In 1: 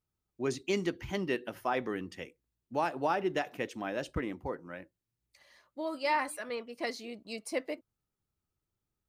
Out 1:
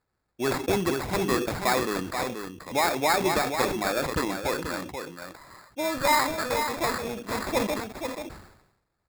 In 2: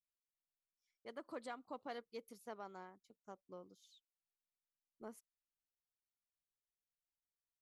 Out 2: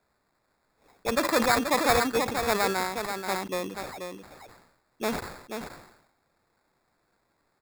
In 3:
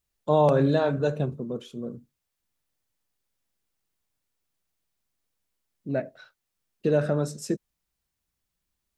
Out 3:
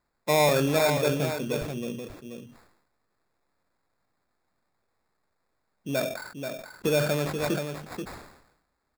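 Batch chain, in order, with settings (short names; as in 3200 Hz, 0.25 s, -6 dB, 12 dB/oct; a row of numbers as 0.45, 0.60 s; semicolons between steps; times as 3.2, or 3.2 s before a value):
LPF 7700 Hz 12 dB/oct; tilt shelf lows -4.5 dB, about 700 Hz; in parallel at +1 dB: compressor, threshold -36 dBFS; on the sum: sample-rate reducer 3000 Hz, jitter 0%; on a send: echo 0.483 s -7 dB; on the sum: sustainer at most 68 dB/s; match loudness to -27 LUFS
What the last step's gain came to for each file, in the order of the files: +3.5, +16.5, -2.0 dB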